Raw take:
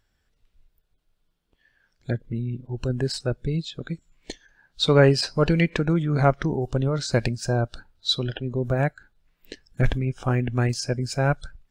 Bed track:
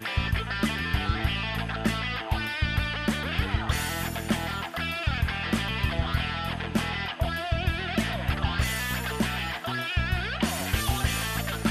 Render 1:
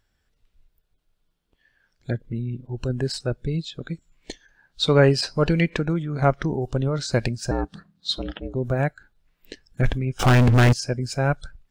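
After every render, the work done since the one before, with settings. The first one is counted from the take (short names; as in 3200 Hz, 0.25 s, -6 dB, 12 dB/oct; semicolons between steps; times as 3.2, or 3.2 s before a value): 5.74–6.22 fade out, to -7 dB; 7.51–8.55 ring modulator 180 Hz; 10.19–10.73 sample leveller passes 5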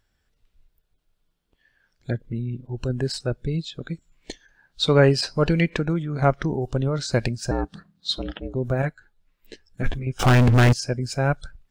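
8.82–10.07 ensemble effect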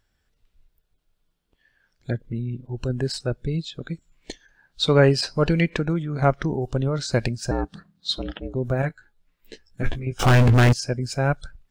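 8.88–10.53 doubler 18 ms -9 dB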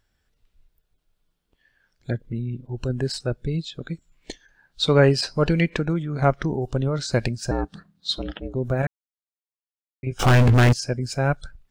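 8.87–10.03 mute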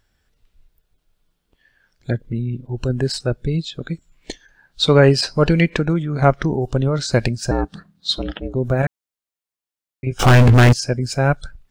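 gain +5 dB; limiter -1 dBFS, peak gain reduction 1.5 dB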